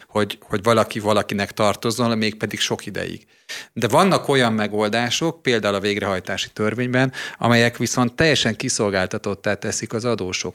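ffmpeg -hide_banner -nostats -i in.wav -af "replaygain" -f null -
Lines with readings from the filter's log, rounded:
track_gain = -0.6 dB
track_peak = 0.498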